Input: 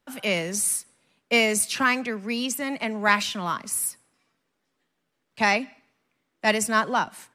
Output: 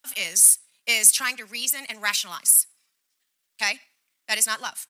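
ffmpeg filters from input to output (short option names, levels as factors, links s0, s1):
-af "tiltshelf=f=930:g=-9,crystalizer=i=3:c=0,atempo=1.5,volume=0.316"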